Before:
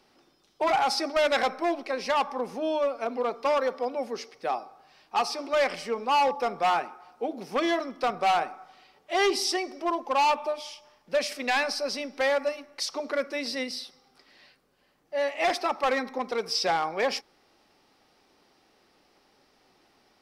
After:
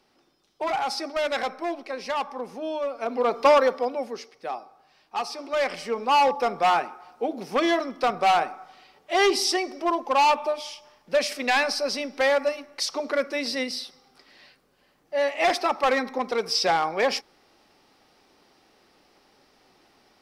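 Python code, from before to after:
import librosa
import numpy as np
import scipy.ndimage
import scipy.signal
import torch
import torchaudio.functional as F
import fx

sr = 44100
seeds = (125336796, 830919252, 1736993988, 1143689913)

y = fx.gain(x, sr, db=fx.line((2.84, -2.5), (3.45, 9.0), (4.31, -3.0), (5.29, -3.0), (6.11, 3.5)))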